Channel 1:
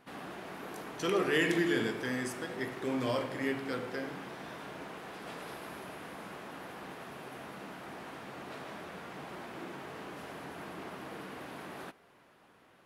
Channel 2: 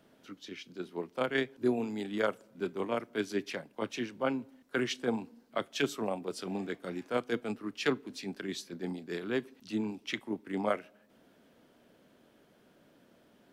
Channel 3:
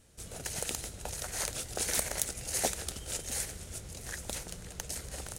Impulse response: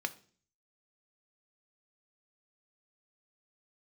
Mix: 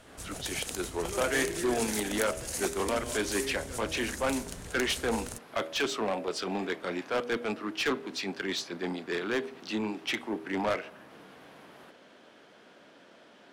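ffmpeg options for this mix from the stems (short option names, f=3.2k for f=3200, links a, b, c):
-filter_complex "[0:a]volume=-9dB[a];[1:a]lowpass=7.8k,bandreject=f=80.38:t=h:w=4,bandreject=f=160.76:t=h:w=4,bandreject=f=241.14:t=h:w=4,bandreject=f=321.52:t=h:w=4,bandreject=f=401.9:t=h:w=4,bandreject=f=482.28:t=h:w=4,bandreject=f=562.66:t=h:w=4,bandreject=f=643.04:t=h:w=4,asplit=2[b][c];[c]highpass=f=720:p=1,volume=23dB,asoftclip=type=tanh:threshold=-15.5dB[d];[b][d]amix=inputs=2:normalize=0,lowpass=f=5.6k:p=1,volume=-6dB,volume=-4.5dB[e];[2:a]acompressor=threshold=-36dB:ratio=2.5,volume=1.5dB[f];[a][e][f]amix=inputs=3:normalize=0"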